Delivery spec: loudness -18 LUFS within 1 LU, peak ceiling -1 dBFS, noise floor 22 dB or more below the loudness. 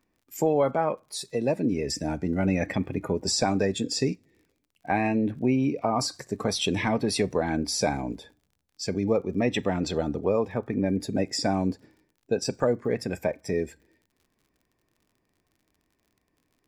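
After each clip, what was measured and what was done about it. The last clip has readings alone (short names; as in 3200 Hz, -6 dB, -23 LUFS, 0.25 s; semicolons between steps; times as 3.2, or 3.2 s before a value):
ticks 50/s; loudness -27.0 LUFS; peak -12.0 dBFS; loudness target -18.0 LUFS
-> de-click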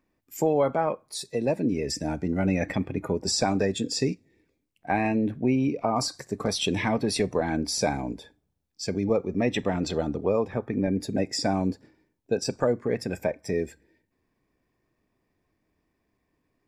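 ticks 0.12/s; loudness -27.0 LUFS; peak -12.0 dBFS; loudness target -18.0 LUFS
-> gain +9 dB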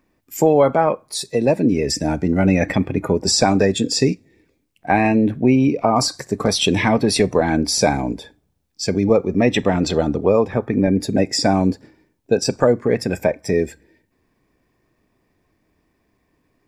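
loudness -18.0 LUFS; peak -3.0 dBFS; noise floor -68 dBFS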